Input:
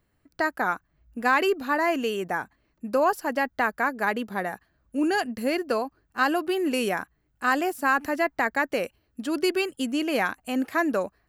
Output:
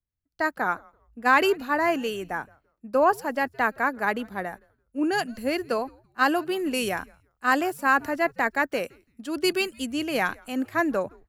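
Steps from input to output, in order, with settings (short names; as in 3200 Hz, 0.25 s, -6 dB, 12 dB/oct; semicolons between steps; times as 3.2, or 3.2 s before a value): frequency-shifting echo 0.168 s, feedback 37%, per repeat -150 Hz, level -23.5 dB; three-band expander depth 70%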